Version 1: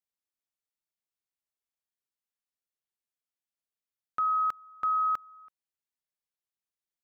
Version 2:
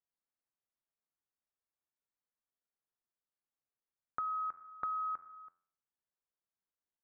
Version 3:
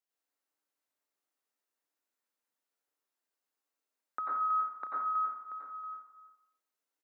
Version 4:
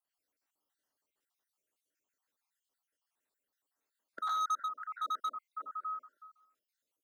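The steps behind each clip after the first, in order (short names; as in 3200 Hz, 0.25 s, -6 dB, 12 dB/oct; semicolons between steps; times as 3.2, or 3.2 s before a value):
LPF 1700 Hz 24 dB/oct; de-hum 86.55 Hz, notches 31; compressor, threshold -36 dBFS, peak gain reduction 9.5 dB
steep high-pass 240 Hz 36 dB/oct; echo 0.683 s -12.5 dB; plate-style reverb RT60 0.69 s, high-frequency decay 0.6×, pre-delay 80 ms, DRR -5 dB
random spectral dropouts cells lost 56%; in parallel at -3.5 dB: wavefolder -37 dBFS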